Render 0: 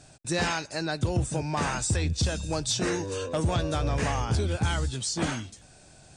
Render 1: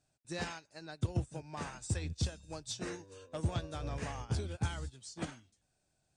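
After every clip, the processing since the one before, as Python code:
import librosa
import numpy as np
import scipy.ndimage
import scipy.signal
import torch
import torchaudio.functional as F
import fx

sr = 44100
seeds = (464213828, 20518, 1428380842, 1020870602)

y = fx.upward_expand(x, sr, threshold_db=-35.0, expansion=2.5)
y = y * 10.0 ** (-5.0 / 20.0)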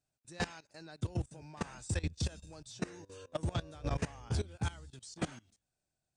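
y = fx.level_steps(x, sr, step_db=19)
y = y * 10.0 ** (7.0 / 20.0)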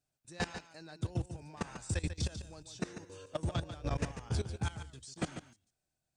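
y = x + 10.0 ** (-10.0 / 20.0) * np.pad(x, (int(144 * sr / 1000.0), 0))[:len(x)]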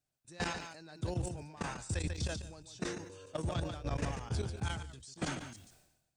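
y = fx.sustainer(x, sr, db_per_s=59.0)
y = y * 10.0 ** (-2.0 / 20.0)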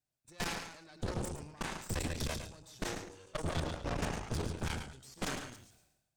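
y = fx.cheby_harmonics(x, sr, harmonics=(6,), levels_db=(-8,), full_scale_db=-24.0)
y = y + 10.0 ** (-9.5 / 20.0) * np.pad(y, (int(107 * sr / 1000.0), 0))[:len(y)]
y = y * 10.0 ** (-3.5 / 20.0)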